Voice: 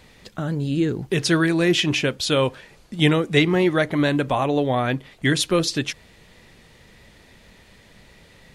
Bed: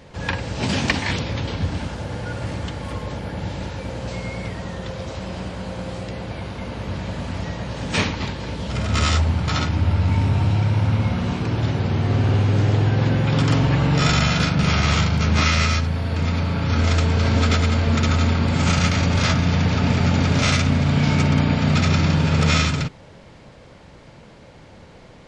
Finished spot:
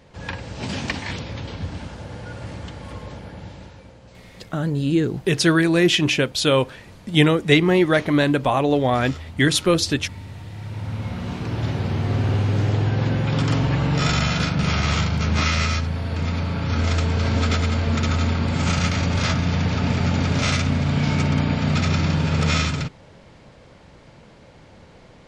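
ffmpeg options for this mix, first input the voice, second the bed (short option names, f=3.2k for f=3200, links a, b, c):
-filter_complex "[0:a]adelay=4150,volume=2dB[a];[1:a]volume=9.5dB,afade=t=out:st=3.05:d=0.94:silence=0.251189,afade=t=in:st=10.51:d=1.2:silence=0.16788[b];[a][b]amix=inputs=2:normalize=0"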